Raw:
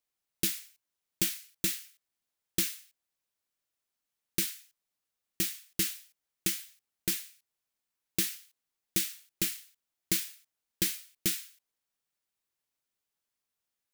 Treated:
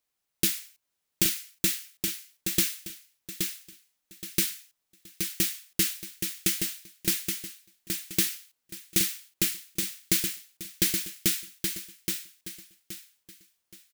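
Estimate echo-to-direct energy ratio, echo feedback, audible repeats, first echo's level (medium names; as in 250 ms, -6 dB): -5.0 dB, 30%, 3, -5.5 dB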